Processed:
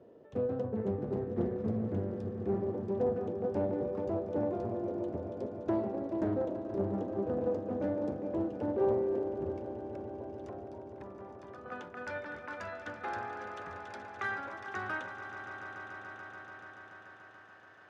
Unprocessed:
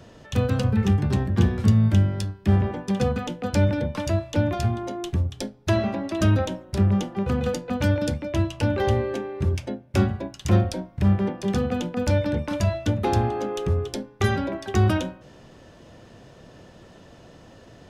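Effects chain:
dynamic equaliser 3,000 Hz, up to −5 dB, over −51 dBFS, Q 1.7
band-pass filter sweep 420 Hz → 1,500 Hz, 0:09.18–0:12.01
0:09.56–0:11.66: downward compressor 6 to 1, threshold −48 dBFS, peak gain reduction 19 dB
echo that builds up and dies away 144 ms, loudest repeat 5, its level −13.5 dB
highs frequency-modulated by the lows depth 0.35 ms
level −2 dB

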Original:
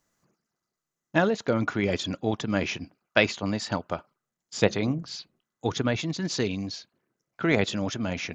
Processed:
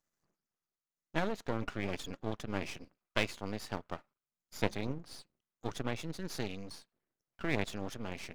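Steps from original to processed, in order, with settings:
half-wave rectification
level −8 dB

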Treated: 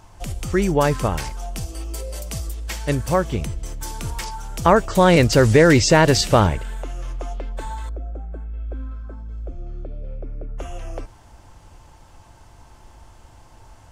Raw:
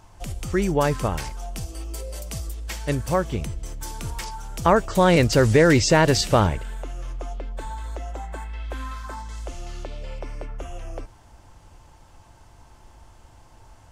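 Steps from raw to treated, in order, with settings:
0:07.89–0:10.58: moving average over 46 samples
level +3 dB

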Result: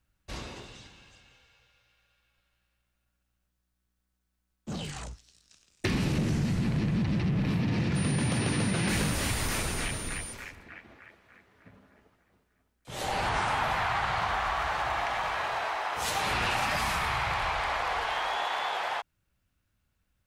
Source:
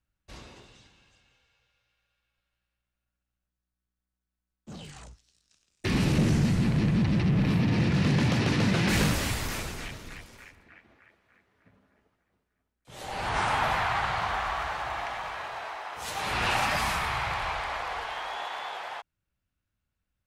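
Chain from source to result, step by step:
downward compressor 4 to 1, threshold −34 dBFS, peak gain reduction 12.5 dB
0:07.95–0:10.32: steady tone 9,200 Hz −46 dBFS
level +7 dB

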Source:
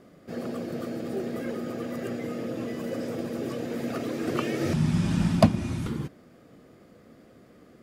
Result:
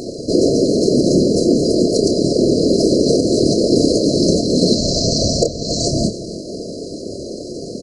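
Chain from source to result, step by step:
band-pass filter 400–6,800 Hz
spectral tilt +3 dB per octave
mains-hum notches 60/120/180/240/300/360/420/480/540 Hz
downward compressor 5 to 1, threshold −44 dBFS, peak gain reduction 24 dB
pitch shifter −6 semitones
random phases in short frames
double-tracking delay 28 ms −7.5 dB
on a send: single-tap delay 281 ms −17 dB
on the sum: brick-wall band-stop 700–4,000 Hz
boost into a limiter +35 dB
level −1 dB

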